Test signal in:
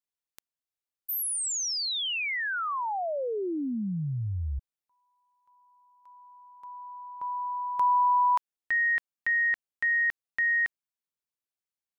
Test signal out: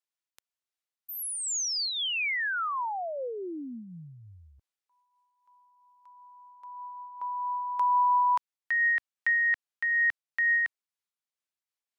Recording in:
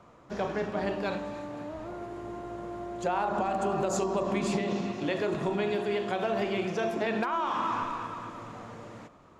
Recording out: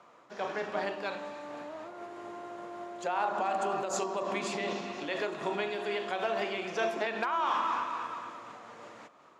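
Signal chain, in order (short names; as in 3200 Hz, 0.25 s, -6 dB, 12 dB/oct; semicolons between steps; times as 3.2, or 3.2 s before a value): weighting filter A; noise-modulated level, depth 60%; gain +2.5 dB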